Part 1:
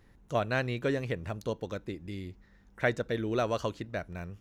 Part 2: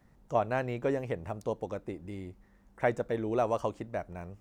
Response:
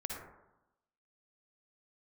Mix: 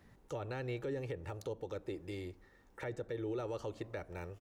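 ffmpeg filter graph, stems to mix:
-filter_complex "[0:a]highpass=57,volume=0.75[s0];[1:a]adelay=2.5,volume=0.75,asplit=2[s1][s2];[s2]volume=0.0794[s3];[2:a]atrim=start_sample=2205[s4];[s3][s4]afir=irnorm=-1:irlink=0[s5];[s0][s1][s5]amix=inputs=3:normalize=0,acrossover=split=310[s6][s7];[s7]acompressor=threshold=0.0112:ratio=4[s8];[s6][s8]amix=inputs=2:normalize=0,alimiter=level_in=2.24:limit=0.0631:level=0:latency=1:release=35,volume=0.447"

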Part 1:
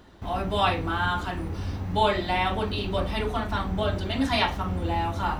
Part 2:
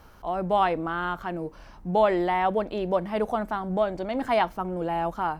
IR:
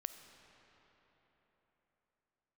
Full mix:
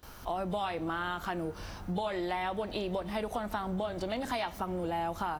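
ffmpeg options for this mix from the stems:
-filter_complex "[0:a]volume=0.158[s0];[1:a]acompressor=threshold=0.0398:ratio=6,adelay=29,volume=0.891,asplit=2[s1][s2];[s2]volume=0.447[s3];[2:a]atrim=start_sample=2205[s4];[s3][s4]afir=irnorm=-1:irlink=0[s5];[s0][s1][s5]amix=inputs=3:normalize=0,highshelf=f=3200:g=11,acompressor=threshold=0.0251:ratio=2.5"

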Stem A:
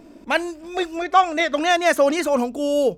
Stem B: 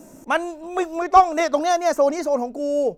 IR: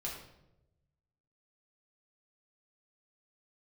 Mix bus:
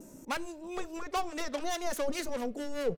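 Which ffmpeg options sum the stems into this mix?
-filter_complex "[0:a]aeval=exprs='(tanh(20*val(0)+0.75)-tanh(0.75))/20':c=same,acrossover=split=790[s0][s1];[s0]aeval=exprs='val(0)*(1-1/2+1/2*cos(2*PI*4.8*n/s))':c=same[s2];[s1]aeval=exprs='val(0)*(1-1/2-1/2*cos(2*PI*4.8*n/s))':c=same[s3];[s2][s3]amix=inputs=2:normalize=0,equalizer=f=790:t=o:w=0.77:g=-5,volume=0.891,asplit=2[s4][s5];[s5]volume=0.133[s6];[1:a]equalizer=f=690:t=o:w=0.22:g=-7.5,acompressor=threshold=0.0398:ratio=2,volume=-1,adelay=4.4,volume=0.562,asplit=2[s7][s8];[s8]apad=whole_len=131122[s9];[s4][s9]sidechaingate=range=0.0224:threshold=0.0126:ratio=16:detection=peak[s10];[2:a]atrim=start_sample=2205[s11];[s6][s11]afir=irnorm=-1:irlink=0[s12];[s10][s7][s12]amix=inputs=3:normalize=0,equalizer=f=1400:w=0.58:g=-4.5"

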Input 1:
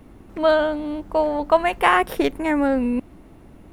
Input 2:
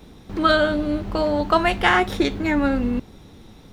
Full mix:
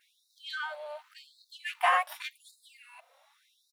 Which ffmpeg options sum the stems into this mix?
-filter_complex "[0:a]asplit=2[s0][s1];[s1]adelay=3.2,afreqshift=2.5[s2];[s0][s2]amix=inputs=2:normalize=1,volume=0.562,asplit=2[s3][s4];[1:a]aeval=exprs='(tanh(7.08*val(0)+0.8)-tanh(0.8))/7.08':c=same,acompressor=threshold=0.0398:ratio=2,adelay=11,volume=0.398[s5];[s4]apad=whole_len=164686[s6];[s5][s6]sidechaincompress=threshold=0.0447:ratio=8:attack=16:release=984[s7];[s3][s7]amix=inputs=2:normalize=0,afftfilt=real='re*gte(b*sr/1024,470*pow(3700/470,0.5+0.5*sin(2*PI*0.88*pts/sr)))':imag='im*gte(b*sr/1024,470*pow(3700/470,0.5+0.5*sin(2*PI*0.88*pts/sr)))':win_size=1024:overlap=0.75"

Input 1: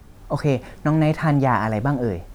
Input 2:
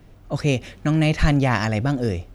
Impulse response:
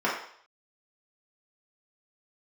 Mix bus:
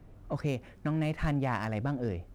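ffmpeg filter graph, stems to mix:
-filter_complex "[0:a]volume=0.112,asplit=2[s0][s1];[1:a]adynamicsmooth=sensitivity=3.5:basefreq=2100,volume=0.562[s2];[s1]apad=whole_len=103440[s3];[s2][s3]sidechaincompress=threshold=0.00794:ratio=8:attack=6.1:release=964[s4];[s0][s4]amix=inputs=2:normalize=0"

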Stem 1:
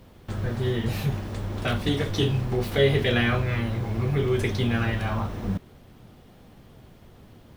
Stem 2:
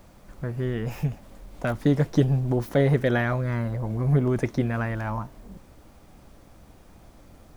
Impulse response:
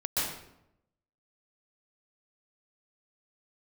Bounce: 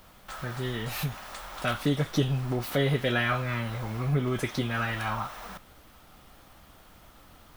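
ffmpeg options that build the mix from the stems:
-filter_complex "[0:a]highpass=f=710:w=0.5412,highpass=f=710:w=1.3066,highshelf=f=8100:g=7.5,volume=1.12[s0];[1:a]volume=0.531,asplit=2[s1][s2];[s2]apad=whole_len=333480[s3];[s0][s3]sidechaincompress=threshold=0.0251:ratio=3:attack=16:release=334[s4];[s4][s1]amix=inputs=2:normalize=0,equalizer=f=1300:w=5.6:g=6"

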